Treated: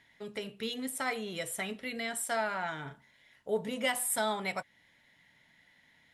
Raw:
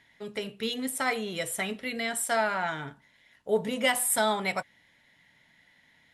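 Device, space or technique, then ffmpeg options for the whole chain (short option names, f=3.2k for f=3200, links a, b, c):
parallel compression: -filter_complex "[0:a]asettb=1/sr,asplit=3[a][b][c];[a]atrim=end=2.824[d];[b]atrim=start=2.82:end=3.5,asetpts=PTS-STARTPTS,afade=t=in:d=0.004:c=qsin,afade=t=out:st=0.676:d=0.004:c=qsin,asplit=2[e][f];[f]adelay=37,volume=-7.5dB[g];[e][g]amix=inputs=2:normalize=0,atrim=end_sample=29988[h];[c]atrim=start=3.496[i];[d][h]acrossfade=d=0.004:c1=hsin:c2=qsin[j];[j][i]acrossfade=d=0.004:c1=qsin:c2=hsin,asplit=2[k][l];[l]acompressor=threshold=-39dB:ratio=6,volume=-4dB[m];[k][m]amix=inputs=2:normalize=0,volume=-6.5dB"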